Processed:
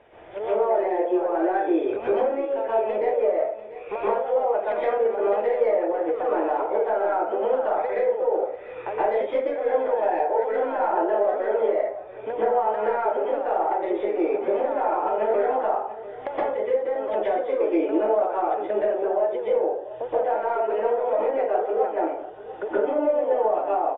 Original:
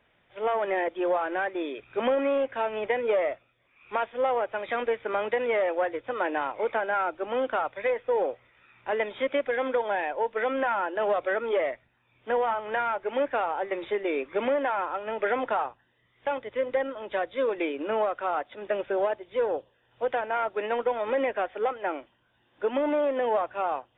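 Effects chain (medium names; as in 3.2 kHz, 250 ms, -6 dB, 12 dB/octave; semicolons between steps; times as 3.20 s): tracing distortion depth 0.027 ms; low-pass 3.1 kHz 12 dB/octave; high-order bell 540 Hz +10 dB; compression 12:1, threshold -36 dBFS, peak gain reduction 24.5 dB; delay 692 ms -15.5 dB; plate-style reverb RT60 0.53 s, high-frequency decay 0.5×, pre-delay 110 ms, DRR -8.5 dB; trim +6 dB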